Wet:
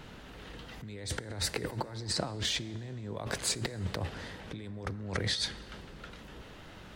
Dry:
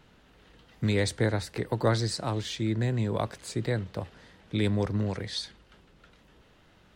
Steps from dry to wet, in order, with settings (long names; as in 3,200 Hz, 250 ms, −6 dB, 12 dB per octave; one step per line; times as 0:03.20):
0:01.76–0:02.44: high-shelf EQ 9,300 Hz → 5,100 Hz −9 dB
compressor whose output falls as the input rises −39 dBFS, ratio −1
dense smooth reverb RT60 3.7 s, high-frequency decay 0.45×, DRR 16.5 dB
level +1.5 dB